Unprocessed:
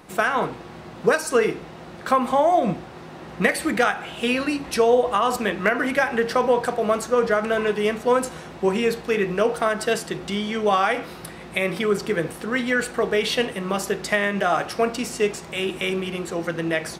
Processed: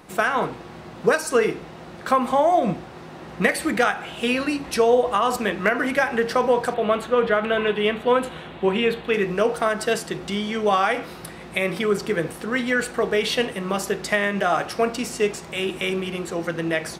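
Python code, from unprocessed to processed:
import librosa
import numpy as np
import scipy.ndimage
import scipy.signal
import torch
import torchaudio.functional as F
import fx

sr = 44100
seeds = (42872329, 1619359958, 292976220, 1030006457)

y = fx.high_shelf_res(x, sr, hz=4300.0, db=-8.0, q=3.0, at=(6.74, 9.14))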